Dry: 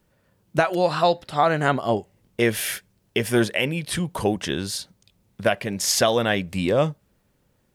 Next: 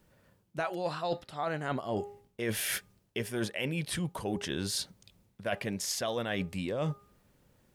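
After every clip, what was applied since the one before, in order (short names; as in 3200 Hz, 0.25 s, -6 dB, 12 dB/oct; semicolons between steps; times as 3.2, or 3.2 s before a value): de-hum 407.1 Hz, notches 3; reverse; compressor 10:1, threshold -30 dBFS, peak gain reduction 16.5 dB; reverse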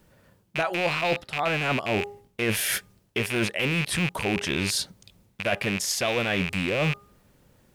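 rattling part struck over -47 dBFS, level -23 dBFS; gain +6.5 dB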